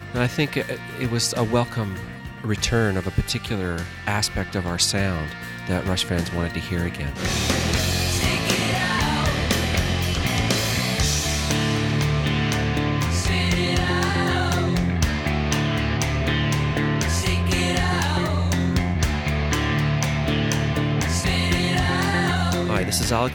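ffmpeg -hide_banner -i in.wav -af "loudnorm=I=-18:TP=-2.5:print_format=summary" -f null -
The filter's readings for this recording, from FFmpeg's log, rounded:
Input Integrated:    -22.2 LUFS
Input True Peak:      -6.4 dBTP
Input LRA:             2.6 LU
Input Threshold:     -32.2 LUFS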